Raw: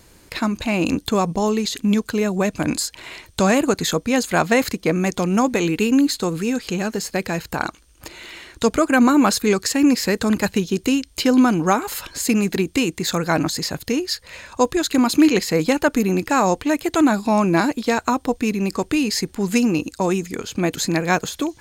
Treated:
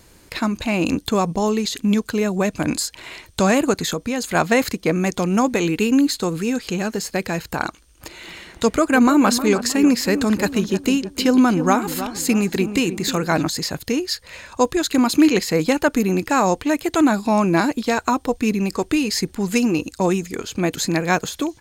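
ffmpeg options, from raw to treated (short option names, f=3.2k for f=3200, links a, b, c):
-filter_complex "[0:a]asettb=1/sr,asplit=3[a][b][c];[a]atrim=end=3.794[d];[b]atrim=start=3.79:end=4.35,asetpts=PTS-STARTPTS,afade=t=in:d=0.004:c=qsin,afade=t=out:st=0.556:d=0.004:c=qsin,acompressor=threshold=-19dB:ratio=4:attack=3.2:release=140:knee=1:detection=peak[e];[c]atrim=start=4.346[f];[d][e]acrossfade=d=0.004:c1=hsin:c2=qsin[g];[g][f]acrossfade=d=0.004:c1=qsin:c2=hsin,asplit=3[h][i][j];[h]afade=t=out:st=8.26:d=0.02[k];[i]asplit=2[l][m];[m]adelay=312,lowpass=f=1.3k:p=1,volume=-10dB,asplit=2[n][o];[o]adelay=312,lowpass=f=1.3k:p=1,volume=0.43,asplit=2[p][q];[q]adelay=312,lowpass=f=1.3k:p=1,volume=0.43,asplit=2[r][s];[s]adelay=312,lowpass=f=1.3k:p=1,volume=0.43,asplit=2[t][u];[u]adelay=312,lowpass=f=1.3k:p=1,volume=0.43[v];[l][n][p][r][t][v]amix=inputs=6:normalize=0,afade=t=in:st=8.26:d=0.02,afade=t=out:st=13.43:d=0.02[w];[j]afade=t=in:st=13.43:d=0.02[x];[k][w][x]amix=inputs=3:normalize=0,asettb=1/sr,asplit=3[y][z][aa];[y]atrim=end=17.754[ab];[z]atrim=start=17.75:end=20.59,asetpts=PTS-STARTPTS,afade=t=in:d=0.004:c=qsin,afade=t=out:st=2.836:d=0.004:c=qsin,aphaser=in_gain=1:out_gain=1:delay=3.2:decay=0.24:speed=1.3:type=triangular[ac];[aa]atrim=start=20.586[ad];[ab][ac]acrossfade=d=0.004:c1=hsin:c2=qsin[ae];[ae][ad]acrossfade=d=0.004:c1=qsin:c2=hsin"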